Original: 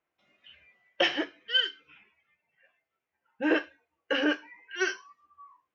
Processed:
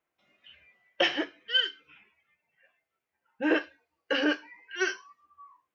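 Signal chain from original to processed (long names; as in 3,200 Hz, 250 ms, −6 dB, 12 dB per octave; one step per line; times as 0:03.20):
0:03.61–0:04.74: parametric band 4,600 Hz +9.5 dB 0.31 octaves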